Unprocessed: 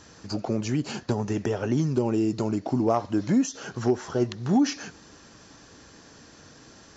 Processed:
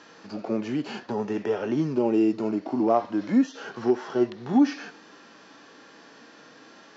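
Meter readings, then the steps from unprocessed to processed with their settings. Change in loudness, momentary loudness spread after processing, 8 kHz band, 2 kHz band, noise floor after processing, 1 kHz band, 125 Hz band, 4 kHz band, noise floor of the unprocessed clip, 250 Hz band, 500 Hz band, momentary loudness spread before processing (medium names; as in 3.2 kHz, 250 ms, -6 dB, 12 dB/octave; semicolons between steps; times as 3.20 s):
+1.0 dB, 9 LU, no reading, +0.5 dB, -51 dBFS, +1.5 dB, -9.0 dB, -4.5 dB, -52 dBFS, +1.0 dB, +1.5 dB, 6 LU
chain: three-band isolator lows -20 dB, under 160 Hz, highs -21 dB, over 4.4 kHz; harmonic-percussive split percussive -14 dB; bass shelf 210 Hz -12 dB; trim +8 dB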